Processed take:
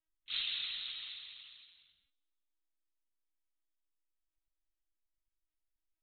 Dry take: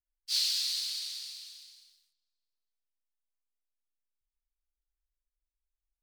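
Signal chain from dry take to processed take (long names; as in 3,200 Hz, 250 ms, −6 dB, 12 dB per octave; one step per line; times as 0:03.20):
linear-prediction vocoder at 8 kHz pitch kept
level +2 dB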